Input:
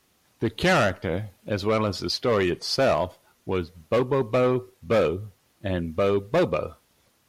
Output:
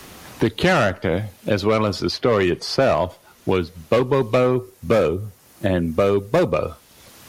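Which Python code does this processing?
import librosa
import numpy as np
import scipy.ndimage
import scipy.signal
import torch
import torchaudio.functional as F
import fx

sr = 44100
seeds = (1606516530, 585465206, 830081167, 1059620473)

y = fx.peak_eq(x, sr, hz=3500.0, db=-6.5, octaves=1.5, at=(4.43, 6.57))
y = fx.band_squash(y, sr, depth_pct=70)
y = y * librosa.db_to_amplitude(4.5)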